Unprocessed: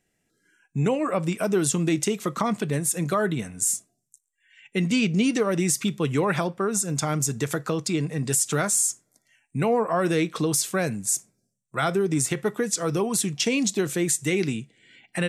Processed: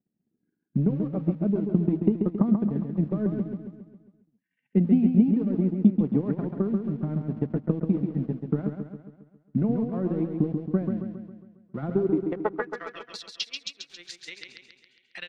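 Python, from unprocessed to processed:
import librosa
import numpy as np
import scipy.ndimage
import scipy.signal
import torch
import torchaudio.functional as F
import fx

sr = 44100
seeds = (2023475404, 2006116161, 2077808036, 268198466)

p1 = fx.filter_sweep_bandpass(x, sr, from_hz=220.0, to_hz=4500.0, start_s=11.92, end_s=13.14, q=2.4)
p2 = fx.transient(p1, sr, attack_db=10, sustain_db=-12)
p3 = np.where(np.abs(p2) >= 10.0 ** (-39.0 / 20.0), p2, 0.0)
p4 = p2 + (p3 * librosa.db_to_amplitude(-9.0))
p5 = fx.air_absorb(p4, sr, metres=300.0)
p6 = p5 + fx.echo_feedback(p5, sr, ms=136, feedback_pct=52, wet_db=-5.5, dry=0)
y = p6 * librosa.db_to_amplitude(-1.5)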